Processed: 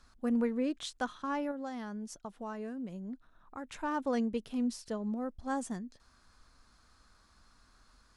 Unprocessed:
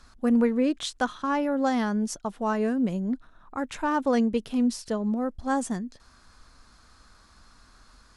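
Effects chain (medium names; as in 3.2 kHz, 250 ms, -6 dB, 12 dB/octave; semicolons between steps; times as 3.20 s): 1.51–3.67 s: compression 2:1, threshold -34 dBFS, peak gain reduction 7.5 dB; trim -8.5 dB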